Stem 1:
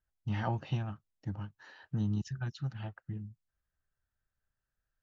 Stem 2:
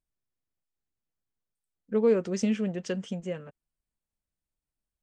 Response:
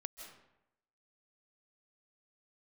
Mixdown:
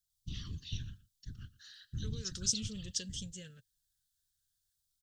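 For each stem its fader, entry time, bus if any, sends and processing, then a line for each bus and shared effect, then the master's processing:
-1.0 dB, 0.00 s, no send, echo send -20 dB, FFT band-reject 410–1000 Hz; low shelf 98 Hz -9.5 dB; whisperiser
-2.5 dB, 0.10 s, no send, no echo send, bell 470 Hz +8 dB 0.27 oct; limiter -18 dBFS, peak gain reduction 9.5 dB; compressor, threshold -23 dBFS, peak gain reduction 3 dB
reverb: off
echo: echo 0.116 s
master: LFO notch saw down 0.42 Hz 590–1900 Hz; EQ curve 120 Hz 0 dB, 170 Hz -9 dB, 740 Hz -28 dB, 1600 Hz -3 dB, 2300 Hz -12 dB, 3500 Hz +12 dB

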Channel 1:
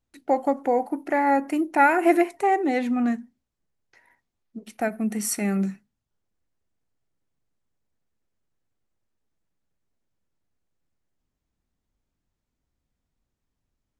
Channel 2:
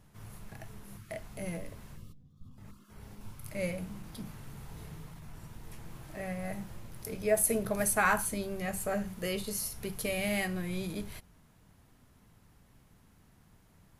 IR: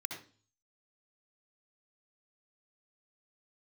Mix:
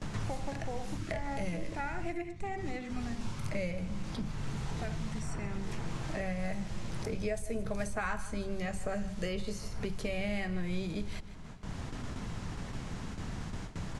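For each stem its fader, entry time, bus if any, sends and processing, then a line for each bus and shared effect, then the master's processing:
-14.5 dB, 0.00 s, send -15 dB, no echo send, auto duck -11 dB, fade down 0.30 s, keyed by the second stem
-1.0 dB, 0.00 s, no send, echo send -18 dB, gate with hold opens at -52 dBFS; low shelf 72 Hz +11 dB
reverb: on, RT60 0.40 s, pre-delay 59 ms
echo: feedback echo 0.153 s, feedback 30%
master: LPF 7600 Hz 24 dB/oct; three-band squash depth 100%

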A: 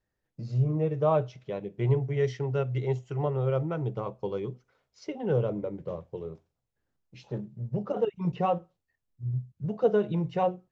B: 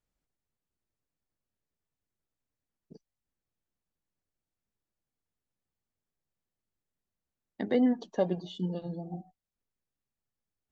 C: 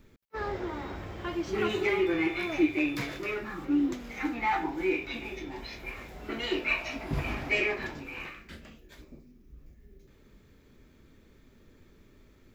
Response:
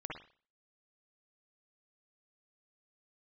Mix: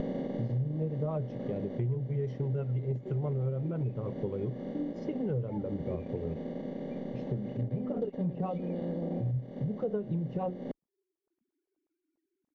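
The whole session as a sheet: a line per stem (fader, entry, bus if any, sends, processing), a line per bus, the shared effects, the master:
0.0 dB, 0.00 s, no bus, no send, rotary speaker horn 6 Hz
-0.5 dB, 0.00 s, bus A, no send, per-bin compression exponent 0.2; auto duck -8 dB, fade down 1.90 s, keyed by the first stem
-19.5 dB, 1.05 s, bus A, no send, sine-wave speech
bus A: 0.0 dB, transient shaper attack +1 dB, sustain -7 dB; limiter -29 dBFS, peak gain reduction 11.5 dB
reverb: off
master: tilt -3.5 dB/oct; compressor 6:1, threshold -30 dBFS, peak gain reduction 17 dB

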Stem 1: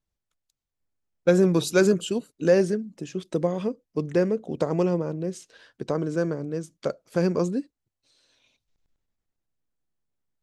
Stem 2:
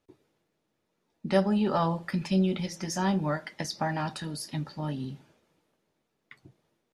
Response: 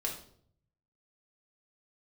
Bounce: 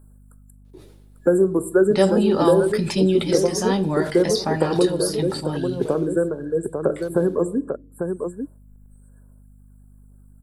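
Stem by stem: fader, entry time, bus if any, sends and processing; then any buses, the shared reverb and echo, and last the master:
-2.0 dB, 0.00 s, send -10.5 dB, echo send -4 dB, reverb removal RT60 1.9 s; FFT band-reject 1700–7300 Hz; three-band squash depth 70%
+2.0 dB, 0.65 s, send -17 dB, no echo send, sustainer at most 81 dB/s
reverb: on, RT60 0.60 s, pre-delay 4 ms
echo: echo 0.846 s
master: fifteen-band EQ 100 Hz +5 dB, 400 Hz +8 dB, 4000 Hz +6 dB, 10000 Hz +10 dB; hum 50 Hz, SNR 27 dB

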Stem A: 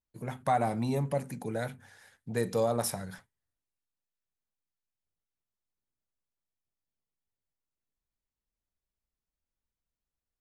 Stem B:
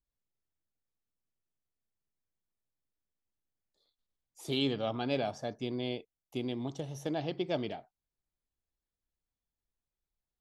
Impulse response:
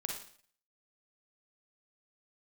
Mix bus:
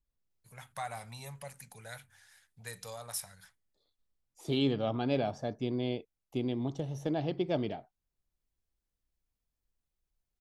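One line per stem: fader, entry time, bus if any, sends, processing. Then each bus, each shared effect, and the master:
0.0 dB, 0.30 s, no send, passive tone stack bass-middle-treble 10-0-10; auto duck -8 dB, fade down 1.85 s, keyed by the second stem
0.0 dB, 0.00 s, no send, tilt -1.5 dB/oct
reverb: off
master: dry

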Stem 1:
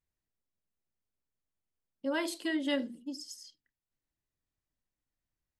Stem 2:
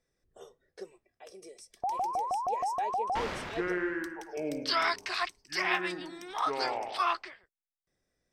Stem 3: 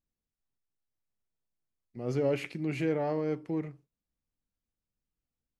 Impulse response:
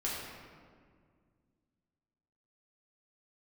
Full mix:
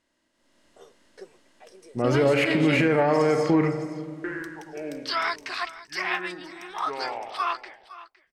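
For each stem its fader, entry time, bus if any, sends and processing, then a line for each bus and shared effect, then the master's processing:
-7.5 dB, 0.00 s, no send, echo send -16 dB, per-bin compression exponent 0.6; LPF 8400 Hz 12 dB/oct; de-esser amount 75%
-14.0 dB, 0.40 s, muted 2.02–4.24, no send, echo send -17 dB, bell 1500 Hz +3 dB 1.7 oct
-3.0 dB, 0.00 s, send -11 dB, no echo send, low-pass opened by the level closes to 390 Hz, open at -29.5 dBFS; bell 1400 Hz +12 dB 2.1 oct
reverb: on, RT60 1.9 s, pre-delay 5 ms
echo: echo 0.511 s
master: AGC gain up to 13.5 dB; limiter -12 dBFS, peak gain reduction 9 dB

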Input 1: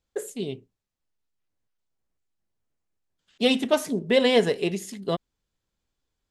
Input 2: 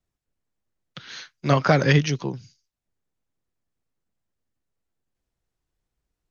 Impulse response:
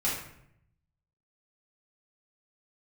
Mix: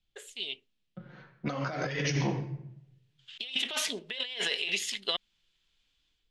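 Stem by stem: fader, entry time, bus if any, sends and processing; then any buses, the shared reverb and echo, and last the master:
0.0 dB, 0.00 s, no send, band-pass 3100 Hz, Q 2.5; AGC gain up to 11 dB; auto duck -9 dB, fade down 1.05 s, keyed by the second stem
-5.5 dB, 0.00 s, send -6.5 dB, low-pass opened by the level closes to 390 Hz, open at -19.5 dBFS; flange 0.46 Hz, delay 1 ms, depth 4.8 ms, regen +42%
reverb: on, RT60 0.70 s, pre-delay 4 ms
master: low shelf 270 Hz -5.5 dB; negative-ratio compressor -33 dBFS, ratio -1

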